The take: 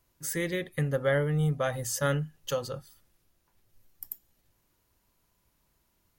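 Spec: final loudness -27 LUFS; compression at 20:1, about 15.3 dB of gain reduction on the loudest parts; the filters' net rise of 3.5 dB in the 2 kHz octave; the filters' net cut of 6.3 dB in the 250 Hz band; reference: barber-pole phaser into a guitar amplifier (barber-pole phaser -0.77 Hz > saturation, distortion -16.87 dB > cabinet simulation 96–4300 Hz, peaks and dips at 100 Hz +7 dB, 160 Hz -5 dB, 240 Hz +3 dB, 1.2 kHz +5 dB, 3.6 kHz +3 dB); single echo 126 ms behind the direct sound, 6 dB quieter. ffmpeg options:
-filter_complex "[0:a]equalizer=f=250:t=o:g=-9,equalizer=f=2000:t=o:g=3.5,acompressor=threshold=0.0141:ratio=20,aecho=1:1:126:0.501,asplit=2[s0][s1];[s1]afreqshift=-0.77[s2];[s0][s2]amix=inputs=2:normalize=1,asoftclip=threshold=0.0178,highpass=96,equalizer=f=100:t=q:w=4:g=7,equalizer=f=160:t=q:w=4:g=-5,equalizer=f=240:t=q:w=4:g=3,equalizer=f=1200:t=q:w=4:g=5,equalizer=f=3600:t=q:w=4:g=3,lowpass=f=4300:w=0.5412,lowpass=f=4300:w=1.3066,volume=8.91"

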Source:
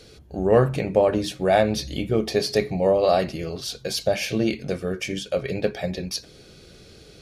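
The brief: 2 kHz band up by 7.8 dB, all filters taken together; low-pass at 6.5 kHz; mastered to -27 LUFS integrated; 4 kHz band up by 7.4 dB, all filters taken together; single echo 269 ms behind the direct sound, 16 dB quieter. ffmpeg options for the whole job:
-af "lowpass=6500,equalizer=f=2000:t=o:g=7.5,equalizer=f=4000:t=o:g=8,aecho=1:1:269:0.158,volume=0.531"

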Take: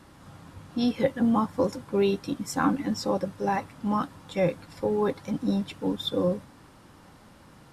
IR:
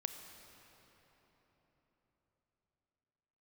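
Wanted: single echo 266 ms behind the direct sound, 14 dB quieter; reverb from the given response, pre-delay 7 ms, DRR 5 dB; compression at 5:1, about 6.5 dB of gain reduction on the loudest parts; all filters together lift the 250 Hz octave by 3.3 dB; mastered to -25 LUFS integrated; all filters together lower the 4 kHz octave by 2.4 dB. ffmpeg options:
-filter_complex "[0:a]equalizer=f=250:t=o:g=4,equalizer=f=4000:t=o:g=-3,acompressor=threshold=0.0708:ratio=5,aecho=1:1:266:0.2,asplit=2[s0][s1];[1:a]atrim=start_sample=2205,adelay=7[s2];[s1][s2]afir=irnorm=-1:irlink=0,volume=0.631[s3];[s0][s3]amix=inputs=2:normalize=0,volume=1.5"

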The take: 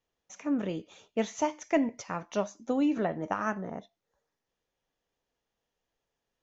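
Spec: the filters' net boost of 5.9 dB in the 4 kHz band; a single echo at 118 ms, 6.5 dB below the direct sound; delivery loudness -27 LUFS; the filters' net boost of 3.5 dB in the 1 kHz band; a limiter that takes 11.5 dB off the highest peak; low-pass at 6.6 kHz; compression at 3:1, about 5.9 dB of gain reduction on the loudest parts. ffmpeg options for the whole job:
-af "lowpass=6600,equalizer=f=1000:t=o:g=4,equalizer=f=4000:t=o:g=8.5,acompressor=threshold=0.0398:ratio=3,alimiter=level_in=1.26:limit=0.0631:level=0:latency=1,volume=0.794,aecho=1:1:118:0.473,volume=3.16"

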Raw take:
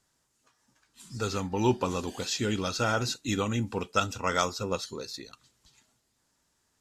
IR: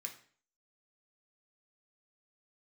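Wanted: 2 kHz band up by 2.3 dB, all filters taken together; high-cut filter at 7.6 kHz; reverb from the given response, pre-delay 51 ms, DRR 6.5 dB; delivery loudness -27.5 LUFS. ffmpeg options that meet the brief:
-filter_complex "[0:a]lowpass=7600,equalizer=f=2000:t=o:g=3.5,asplit=2[s0][s1];[1:a]atrim=start_sample=2205,adelay=51[s2];[s1][s2]afir=irnorm=-1:irlink=0,volume=0.668[s3];[s0][s3]amix=inputs=2:normalize=0,volume=1.19"

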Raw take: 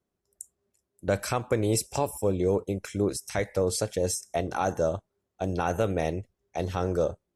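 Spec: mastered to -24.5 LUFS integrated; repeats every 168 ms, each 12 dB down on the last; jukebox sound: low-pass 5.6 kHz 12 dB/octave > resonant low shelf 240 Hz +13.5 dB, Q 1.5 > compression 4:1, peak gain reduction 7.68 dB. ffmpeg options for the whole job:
-af "lowpass=5600,lowshelf=f=240:t=q:w=1.5:g=13.5,aecho=1:1:168|336|504:0.251|0.0628|0.0157,acompressor=threshold=0.126:ratio=4"

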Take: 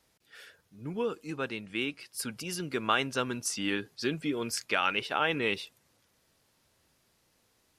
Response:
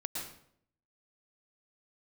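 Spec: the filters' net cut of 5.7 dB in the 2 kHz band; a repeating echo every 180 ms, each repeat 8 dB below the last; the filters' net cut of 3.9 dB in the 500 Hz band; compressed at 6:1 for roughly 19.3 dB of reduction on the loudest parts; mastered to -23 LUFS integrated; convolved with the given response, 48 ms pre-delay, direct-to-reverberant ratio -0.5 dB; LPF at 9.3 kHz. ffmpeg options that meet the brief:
-filter_complex "[0:a]lowpass=9300,equalizer=f=500:t=o:g=-4.5,equalizer=f=2000:t=o:g=-8,acompressor=threshold=0.00398:ratio=6,aecho=1:1:180|360|540|720|900:0.398|0.159|0.0637|0.0255|0.0102,asplit=2[s0][s1];[1:a]atrim=start_sample=2205,adelay=48[s2];[s1][s2]afir=irnorm=-1:irlink=0,volume=0.891[s3];[s0][s3]amix=inputs=2:normalize=0,volume=15"

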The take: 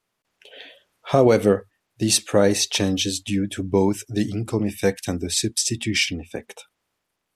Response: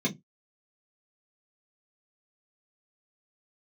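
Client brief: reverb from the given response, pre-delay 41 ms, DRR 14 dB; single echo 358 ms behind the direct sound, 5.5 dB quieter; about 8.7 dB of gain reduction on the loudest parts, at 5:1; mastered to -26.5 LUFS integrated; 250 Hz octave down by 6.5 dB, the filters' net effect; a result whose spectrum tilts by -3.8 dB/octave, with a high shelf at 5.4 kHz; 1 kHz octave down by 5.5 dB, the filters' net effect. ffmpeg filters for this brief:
-filter_complex "[0:a]equalizer=f=250:t=o:g=-8.5,equalizer=f=1000:t=o:g=-7.5,highshelf=f=5400:g=-3,acompressor=threshold=0.0562:ratio=5,aecho=1:1:358:0.531,asplit=2[s0][s1];[1:a]atrim=start_sample=2205,adelay=41[s2];[s1][s2]afir=irnorm=-1:irlink=0,volume=0.0794[s3];[s0][s3]amix=inputs=2:normalize=0,volume=1.26"

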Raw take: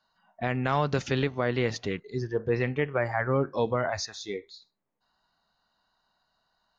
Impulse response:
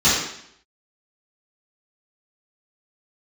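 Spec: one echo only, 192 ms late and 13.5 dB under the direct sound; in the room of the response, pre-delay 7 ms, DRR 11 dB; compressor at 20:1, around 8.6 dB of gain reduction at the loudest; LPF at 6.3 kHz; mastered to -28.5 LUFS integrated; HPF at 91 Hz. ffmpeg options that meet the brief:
-filter_complex "[0:a]highpass=91,lowpass=6300,acompressor=threshold=0.0355:ratio=20,aecho=1:1:192:0.211,asplit=2[s0][s1];[1:a]atrim=start_sample=2205,adelay=7[s2];[s1][s2]afir=irnorm=-1:irlink=0,volume=0.0251[s3];[s0][s3]amix=inputs=2:normalize=0,volume=2.11"

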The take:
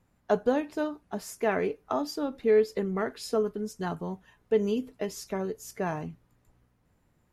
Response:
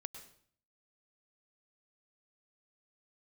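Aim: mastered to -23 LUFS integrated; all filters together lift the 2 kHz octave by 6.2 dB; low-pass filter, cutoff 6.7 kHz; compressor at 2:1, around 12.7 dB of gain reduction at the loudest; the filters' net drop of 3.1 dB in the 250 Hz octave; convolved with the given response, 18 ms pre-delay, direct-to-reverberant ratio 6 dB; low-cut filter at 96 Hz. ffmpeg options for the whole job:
-filter_complex "[0:a]highpass=96,lowpass=6700,equalizer=f=250:t=o:g=-4,equalizer=f=2000:t=o:g=8,acompressor=threshold=0.00708:ratio=2,asplit=2[s0][s1];[1:a]atrim=start_sample=2205,adelay=18[s2];[s1][s2]afir=irnorm=-1:irlink=0,volume=0.75[s3];[s0][s3]amix=inputs=2:normalize=0,volume=6.68"

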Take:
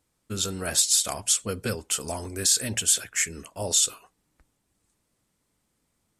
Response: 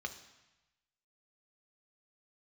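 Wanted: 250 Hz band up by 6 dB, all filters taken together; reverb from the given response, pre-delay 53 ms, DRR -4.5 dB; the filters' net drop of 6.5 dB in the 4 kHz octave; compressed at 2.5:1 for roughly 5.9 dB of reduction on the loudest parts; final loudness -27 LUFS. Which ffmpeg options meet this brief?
-filter_complex "[0:a]equalizer=f=250:t=o:g=7.5,equalizer=f=4000:t=o:g=-8.5,acompressor=threshold=0.0398:ratio=2.5,asplit=2[s0][s1];[1:a]atrim=start_sample=2205,adelay=53[s2];[s1][s2]afir=irnorm=-1:irlink=0,volume=1.58[s3];[s0][s3]amix=inputs=2:normalize=0,volume=0.944"

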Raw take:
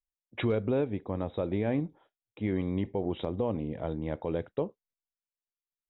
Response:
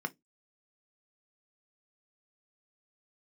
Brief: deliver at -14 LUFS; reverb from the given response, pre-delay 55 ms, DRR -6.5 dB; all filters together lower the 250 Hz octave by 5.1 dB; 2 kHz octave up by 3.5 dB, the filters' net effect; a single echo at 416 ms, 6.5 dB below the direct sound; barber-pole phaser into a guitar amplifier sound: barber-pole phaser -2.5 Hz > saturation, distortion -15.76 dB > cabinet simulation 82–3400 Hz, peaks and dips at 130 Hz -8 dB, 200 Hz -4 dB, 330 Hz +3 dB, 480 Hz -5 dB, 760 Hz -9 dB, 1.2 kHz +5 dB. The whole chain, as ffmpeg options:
-filter_complex "[0:a]equalizer=f=250:t=o:g=-6,equalizer=f=2000:t=o:g=4,aecho=1:1:416:0.473,asplit=2[s0][s1];[1:a]atrim=start_sample=2205,adelay=55[s2];[s1][s2]afir=irnorm=-1:irlink=0,volume=1.41[s3];[s0][s3]amix=inputs=2:normalize=0,asplit=2[s4][s5];[s5]afreqshift=-2.5[s6];[s4][s6]amix=inputs=2:normalize=1,asoftclip=threshold=0.0841,highpass=82,equalizer=f=130:t=q:w=4:g=-8,equalizer=f=200:t=q:w=4:g=-4,equalizer=f=330:t=q:w=4:g=3,equalizer=f=480:t=q:w=4:g=-5,equalizer=f=760:t=q:w=4:g=-9,equalizer=f=1200:t=q:w=4:g=5,lowpass=f=3400:w=0.5412,lowpass=f=3400:w=1.3066,volume=9.44"

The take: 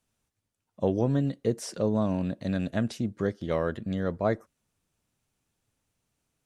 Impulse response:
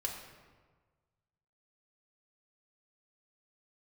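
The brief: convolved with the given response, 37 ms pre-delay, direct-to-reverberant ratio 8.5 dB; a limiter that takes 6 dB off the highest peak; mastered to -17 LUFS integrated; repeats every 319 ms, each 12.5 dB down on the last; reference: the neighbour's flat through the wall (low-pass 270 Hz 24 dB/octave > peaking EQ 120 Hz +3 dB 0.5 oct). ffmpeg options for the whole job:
-filter_complex "[0:a]alimiter=limit=0.126:level=0:latency=1,aecho=1:1:319|638|957:0.237|0.0569|0.0137,asplit=2[s0][s1];[1:a]atrim=start_sample=2205,adelay=37[s2];[s1][s2]afir=irnorm=-1:irlink=0,volume=0.316[s3];[s0][s3]amix=inputs=2:normalize=0,lowpass=f=270:w=0.5412,lowpass=f=270:w=1.3066,equalizer=f=120:t=o:w=0.5:g=3,volume=5.62"

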